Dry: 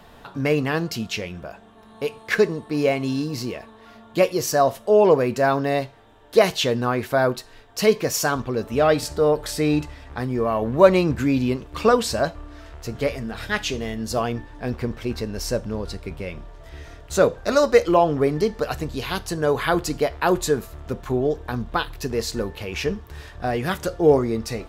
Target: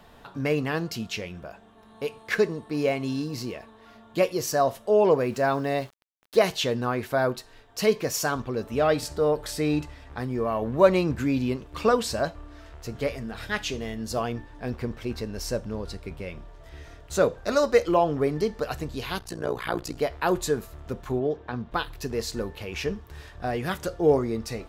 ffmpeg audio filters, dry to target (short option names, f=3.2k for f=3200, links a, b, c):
-filter_complex "[0:a]asettb=1/sr,asplit=3[a][b][c];[a]atrim=end=5.224[d];[b]atrim=start=5.22:end=6.37,asetpts=PTS-STARTPTS,afade=t=in:d=0.004:c=qsin,afade=t=out:st=1.146:d=0.004:c=qsin,aeval=exprs='val(0)*gte(abs(val(0)),0.00794)':c=same[e];[c]atrim=start=6.366[f];[d][e]acrossfade=d=0.004:c1=hsin:c2=qsin[g];[g][f]acrossfade=d=0.004:c1=qsin:c2=hsin,asettb=1/sr,asplit=3[h][i][j];[h]atrim=end=19.194[k];[i]atrim=start=19.19:end=19.97,asetpts=PTS-STARTPTS,afade=t=in:d=0.004:c=qsin,afade=t=out:st=0.776:d=0.004:c=qsin,tremolo=f=60:d=0.947[l];[j]atrim=start=19.966[m];[k][l]acrossfade=d=0.004:c1=hsin:c2=qsin[n];[n][m]acrossfade=d=0.004:c1=qsin:c2=hsin,asplit=3[o][p][q];[o]afade=t=out:st=21.19:d=0.02[r];[p]highpass=100,lowpass=3.8k,afade=t=in:st=21.19:d=0.02,afade=t=out:st=21.7:d=0.02[s];[q]afade=t=in:st=21.7:d=0.02[t];[r][s][t]amix=inputs=3:normalize=0,volume=-4.5dB"